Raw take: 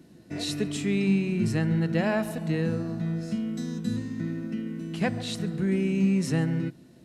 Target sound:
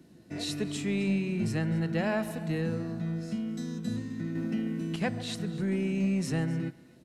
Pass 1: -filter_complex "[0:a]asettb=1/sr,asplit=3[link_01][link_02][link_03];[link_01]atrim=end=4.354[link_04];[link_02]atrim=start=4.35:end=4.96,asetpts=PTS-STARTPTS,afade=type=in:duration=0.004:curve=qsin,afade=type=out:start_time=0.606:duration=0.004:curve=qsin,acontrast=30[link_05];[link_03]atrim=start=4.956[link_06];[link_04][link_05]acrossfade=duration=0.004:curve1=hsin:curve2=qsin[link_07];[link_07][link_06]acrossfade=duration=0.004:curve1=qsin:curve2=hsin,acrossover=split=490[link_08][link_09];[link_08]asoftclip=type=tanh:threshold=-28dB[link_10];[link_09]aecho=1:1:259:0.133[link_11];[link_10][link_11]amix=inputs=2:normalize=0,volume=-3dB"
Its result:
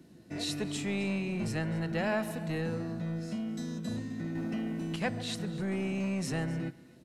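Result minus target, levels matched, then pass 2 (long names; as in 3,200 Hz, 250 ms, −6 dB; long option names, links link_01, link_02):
soft clipping: distortion +10 dB
-filter_complex "[0:a]asettb=1/sr,asplit=3[link_01][link_02][link_03];[link_01]atrim=end=4.354[link_04];[link_02]atrim=start=4.35:end=4.96,asetpts=PTS-STARTPTS,afade=type=in:duration=0.004:curve=qsin,afade=type=out:start_time=0.606:duration=0.004:curve=qsin,acontrast=30[link_05];[link_03]atrim=start=4.956[link_06];[link_04][link_05]acrossfade=duration=0.004:curve1=hsin:curve2=qsin[link_07];[link_07][link_06]acrossfade=duration=0.004:curve1=qsin:curve2=hsin,acrossover=split=490[link_08][link_09];[link_08]asoftclip=type=tanh:threshold=-19dB[link_10];[link_09]aecho=1:1:259:0.133[link_11];[link_10][link_11]amix=inputs=2:normalize=0,volume=-3dB"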